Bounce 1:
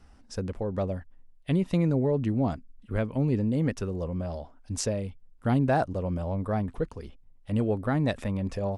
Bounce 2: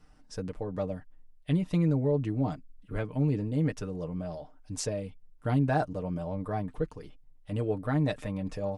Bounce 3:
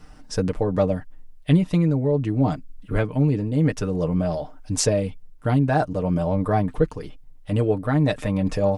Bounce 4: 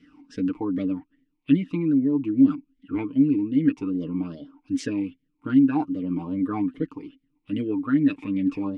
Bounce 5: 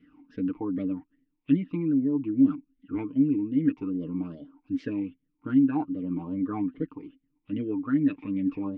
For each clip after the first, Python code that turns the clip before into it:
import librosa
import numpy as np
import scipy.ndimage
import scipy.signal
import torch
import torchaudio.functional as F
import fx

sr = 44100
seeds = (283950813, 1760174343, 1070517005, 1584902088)

y1 = x + 0.65 * np.pad(x, (int(6.6 * sr / 1000.0), 0))[:len(x)]
y1 = y1 * 10.0 ** (-4.5 / 20.0)
y2 = fx.rider(y1, sr, range_db=4, speed_s=0.5)
y2 = y2 * 10.0 ** (9.0 / 20.0)
y3 = fx.vowel_sweep(y2, sr, vowels='i-u', hz=2.5)
y3 = y3 * 10.0 ** (8.0 / 20.0)
y4 = fx.air_absorb(y3, sr, metres=340.0)
y4 = y4 * 10.0 ** (-3.0 / 20.0)